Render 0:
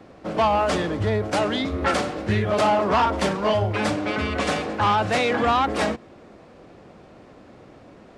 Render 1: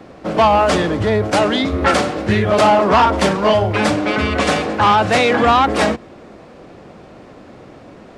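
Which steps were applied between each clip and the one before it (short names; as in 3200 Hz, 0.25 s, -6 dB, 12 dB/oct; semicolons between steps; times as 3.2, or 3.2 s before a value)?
notches 50/100 Hz; gain +7.5 dB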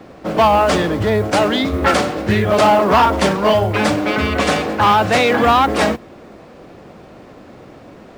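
modulation noise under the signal 32 dB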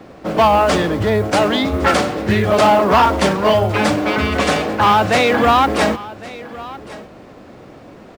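echo 1.109 s -18.5 dB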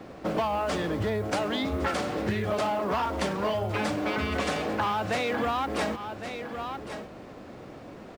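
compressor, threshold -21 dBFS, peak gain reduction 12.5 dB; gain -4.5 dB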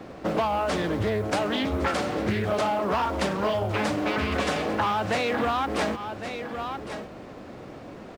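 Doppler distortion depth 0.4 ms; gain +2.5 dB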